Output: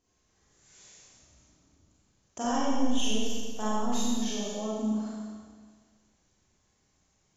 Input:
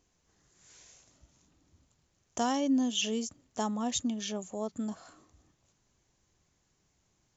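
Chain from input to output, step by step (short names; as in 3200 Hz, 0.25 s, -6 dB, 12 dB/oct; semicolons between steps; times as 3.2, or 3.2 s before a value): 2.45–4.06 half-wave gain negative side -7 dB; spectral gate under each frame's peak -30 dB strong; Schroeder reverb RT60 1.6 s, combs from 29 ms, DRR -8.5 dB; gain -6 dB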